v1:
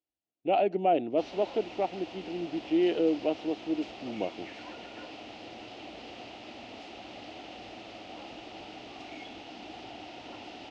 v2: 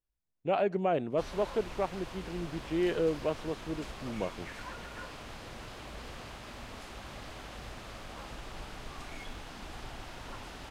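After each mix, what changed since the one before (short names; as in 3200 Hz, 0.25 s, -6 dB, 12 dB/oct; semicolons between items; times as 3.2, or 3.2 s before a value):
master: remove speaker cabinet 150–5600 Hz, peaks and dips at 150 Hz -9 dB, 310 Hz +9 dB, 730 Hz +8 dB, 1100 Hz -10 dB, 1600 Hz -9 dB, 2800 Hz +6 dB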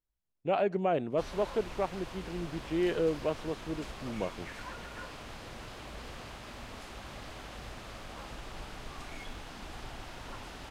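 none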